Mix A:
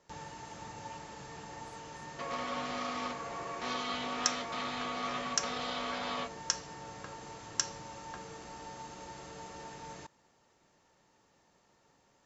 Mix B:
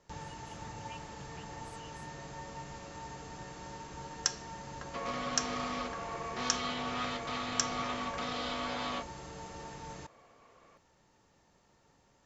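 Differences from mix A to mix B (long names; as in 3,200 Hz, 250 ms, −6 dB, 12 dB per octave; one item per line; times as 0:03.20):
speech +9.0 dB
second sound: entry +2.75 s
master: add low-shelf EQ 120 Hz +10 dB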